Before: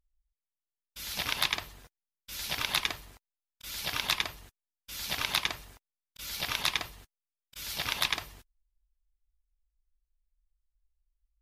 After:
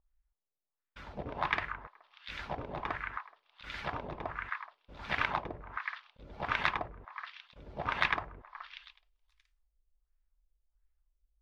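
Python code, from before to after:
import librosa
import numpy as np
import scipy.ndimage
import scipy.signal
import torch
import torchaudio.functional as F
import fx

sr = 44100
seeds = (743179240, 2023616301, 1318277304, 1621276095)

y = fx.echo_stepped(x, sr, ms=424, hz=1500.0, octaves=1.4, feedback_pct=70, wet_db=-6.0)
y = fx.filter_lfo_lowpass(y, sr, shape='sine', hz=1.4, low_hz=480.0, high_hz=1900.0, q=1.8)
y = y * 10.0 ** (1.5 / 20.0)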